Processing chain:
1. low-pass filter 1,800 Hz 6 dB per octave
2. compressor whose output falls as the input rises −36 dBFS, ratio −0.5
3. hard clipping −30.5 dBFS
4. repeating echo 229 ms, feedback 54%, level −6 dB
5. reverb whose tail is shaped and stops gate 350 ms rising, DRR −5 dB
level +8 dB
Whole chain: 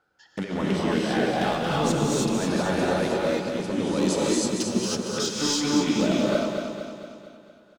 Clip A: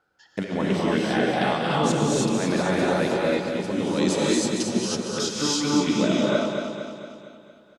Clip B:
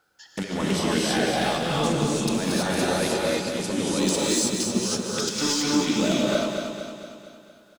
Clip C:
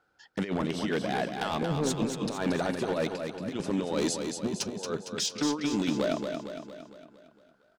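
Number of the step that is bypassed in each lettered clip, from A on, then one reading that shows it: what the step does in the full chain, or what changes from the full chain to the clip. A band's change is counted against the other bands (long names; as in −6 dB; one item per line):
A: 3, distortion level −12 dB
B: 1, 8 kHz band +4.0 dB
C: 5, echo-to-direct ratio 6.5 dB to −4.5 dB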